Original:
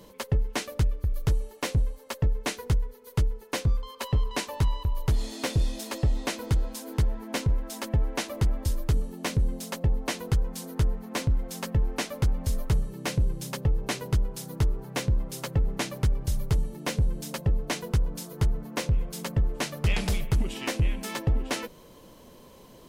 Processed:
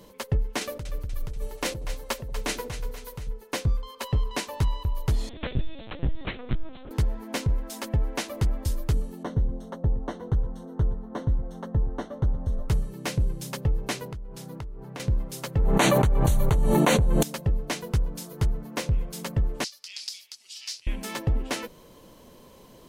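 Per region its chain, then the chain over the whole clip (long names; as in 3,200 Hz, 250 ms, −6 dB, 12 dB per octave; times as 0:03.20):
0:00.61–0:03.29: compressor whose output falls as the input rises −30 dBFS + echo with a time of its own for lows and highs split 580 Hz, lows 92 ms, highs 241 ms, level −10.5 dB
0:05.29–0:06.91: dynamic equaliser 780 Hz, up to −5 dB, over −46 dBFS, Q 1.8 + mains-hum notches 50/100/150/200 Hz + linear-prediction vocoder at 8 kHz pitch kept
0:09.23–0:12.69: moving average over 18 samples + single-tap delay 117 ms −16.5 dB
0:14.05–0:15.00: high-shelf EQ 4,600 Hz −9.5 dB + downward compressor 16 to 1, threshold −33 dBFS + one half of a high-frequency compander decoder only
0:15.59–0:17.23: Butterworth band-reject 5,100 Hz, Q 3.7 + parametric band 870 Hz +8 dB 1.8 octaves + envelope flattener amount 100%
0:19.64–0:20.87: downward compressor 2.5 to 1, threshold −24 dBFS + resonant band-pass 4,900 Hz, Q 3.8 + spectral tilt +4 dB per octave
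whole clip: no processing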